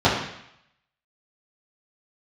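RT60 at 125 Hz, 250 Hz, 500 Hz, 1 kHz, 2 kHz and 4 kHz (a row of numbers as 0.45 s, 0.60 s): 0.75 s, 0.70 s, 0.70 s, 0.80 s, 0.85 s, 0.80 s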